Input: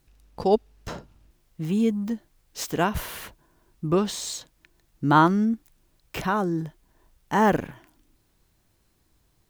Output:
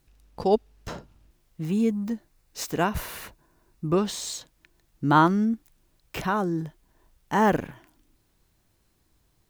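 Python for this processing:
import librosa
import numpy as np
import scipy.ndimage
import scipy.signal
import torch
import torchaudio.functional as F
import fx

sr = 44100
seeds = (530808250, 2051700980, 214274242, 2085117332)

y = fx.notch(x, sr, hz=3200.0, q=11.0, at=(1.63, 4.04))
y = F.gain(torch.from_numpy(y), -1.0).numpy()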